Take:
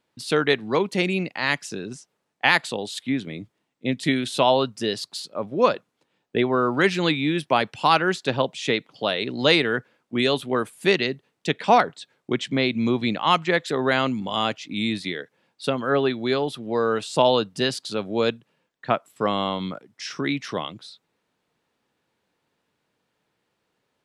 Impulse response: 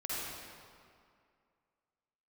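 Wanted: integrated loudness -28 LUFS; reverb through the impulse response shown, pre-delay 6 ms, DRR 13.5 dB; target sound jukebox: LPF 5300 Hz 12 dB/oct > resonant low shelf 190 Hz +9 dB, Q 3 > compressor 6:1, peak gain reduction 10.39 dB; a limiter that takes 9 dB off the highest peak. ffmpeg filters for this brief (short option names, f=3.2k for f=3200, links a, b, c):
-filter_complex "[0:a]alimiter=limit=-11dB:level=0:latency=1,asplit=2[a][b];[1:a]atrim=start_sample=2205,adelay=6[c];[b][c]afir=irnorm=-1:irlink=0,volume=-17.5dB[d];[a][d]amix=inputs=2:normalize=0,lowpass=5.3k,lowshelf=f=190:t=q:w=3:g=9,acompressor=threshold=-22dB:ratio=6"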